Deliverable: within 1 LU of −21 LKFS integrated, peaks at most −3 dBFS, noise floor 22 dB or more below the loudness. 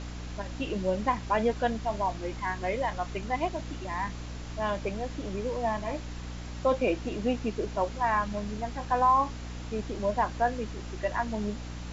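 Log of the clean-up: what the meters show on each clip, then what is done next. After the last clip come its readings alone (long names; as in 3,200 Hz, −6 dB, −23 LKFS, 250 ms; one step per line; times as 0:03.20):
mains hum 60 Hz; hum harmonics up to 300 Hz; level of the hum −37 dBFS; background noise floor −39 dBFS; target noise floor −53 dBFS; integrated loudness −31.0 LKFS; sample peak −13.0 dBFS; target loudness −21.0 LKFS
→ hum removal 60 Hz, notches 5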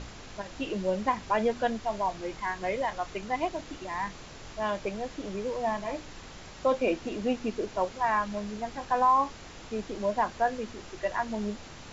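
mains hum none found; background noise floor −46 dBFS; target noise floor −53 dBFS
→ noise reduction from a noise print 7 dB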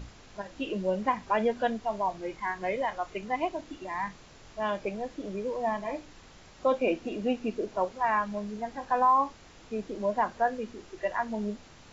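background noise floor −53 dBFS; integrated loudness −31.0 LKFS; sample peak −14.0 dBFS; target loudness −21.0 LKFS
→ level +10 dB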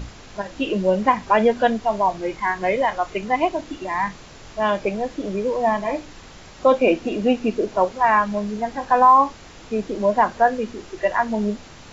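integrated loudness −21.0 LKFS; sample peak −4.0 dBFS; background noise floor −43 dBFS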